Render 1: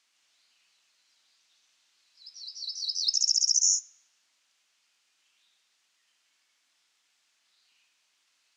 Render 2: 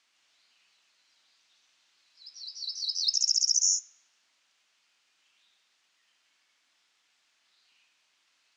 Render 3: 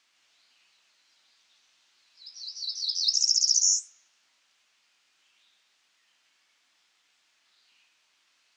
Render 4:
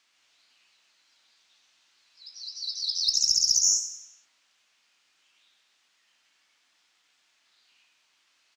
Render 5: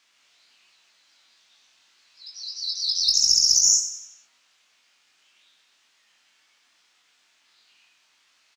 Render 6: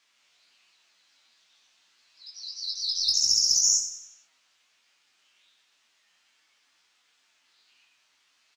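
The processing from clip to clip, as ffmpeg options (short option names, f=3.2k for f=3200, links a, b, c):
-af "highshelf=f=7.9k:g=-12,volume=3dB"
-af "flanger=delay=8.2:depth=9.8:regen=61:speed=1.5:shape=sinusoidal,volume=6.5dB"
-filter_complex "[0:a]aeval=exprs='0.316*(cos(1*acos(clip(val(0)/0.316,-1,1)))-cos(1*PI/2))+0.0141*(cos(4*acos(clip(val(0)/0.316,-1,1)))-cos(4*PI/2))+0.00891*(cos(6*acos(clip(val(0)/0.316,-1,1)))-cos(6*PI/2))':c=same,asplit=2[a][b];[b]aecho=0:1:92|184|276|368|460:0.266|0.122|0.0563|0.0259|0.0119[c];[a][c]amix=inputs=2:normalize=0"
-filter_complex "[0:a]asplit=2[a][b];[b]adelay=22,volume=-3.5dB[c];[a][c]amix=inputs=2:normalize=0,volume=3dB"
-af "flanger=delay=5.8:depth=6.7:regen=42:speed=1.4:shape=triangular"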